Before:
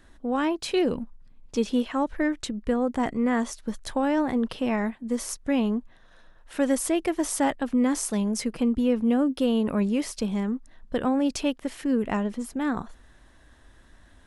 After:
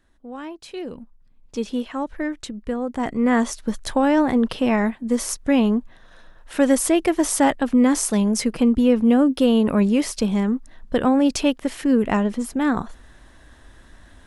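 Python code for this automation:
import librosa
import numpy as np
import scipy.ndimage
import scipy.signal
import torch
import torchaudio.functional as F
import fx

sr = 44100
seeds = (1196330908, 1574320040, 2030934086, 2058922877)

y = fx.gain(x, sr, db=fx.line((0.75, -9.0), (1.61, -1.0), (2.89, -1.0), (3.33, 6.5)))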